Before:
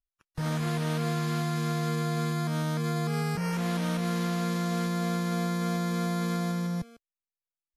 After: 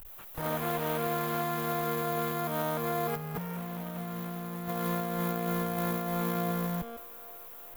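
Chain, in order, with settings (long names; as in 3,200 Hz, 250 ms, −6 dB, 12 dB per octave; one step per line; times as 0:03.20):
converter with a step at zero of −43.5 dBFS
parametric band 140 Hz −12.5 dB 1 octave, from 0:03.16 +2 dB, from 0:04.68 −5.5 dB
delay with a band-pass on its return 400 ms, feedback 73%, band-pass 1,300 Hz, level −19 dB
log-companded quantiser 4 bits
drawn EQ curve 310 Hz 0 dB, 620 Hz +5 dB, 1,100 Hz +2 dB, 1,700 Hz −2 dB, 3,400 Hz −4 dB, 4,900 Hz −12 dB, 9,100 Hz −5 dB, 14,000 Hz +10 dB
compressor whose output falls as the input rises −30 dBFS, ratio −0.5
level −1.5 dB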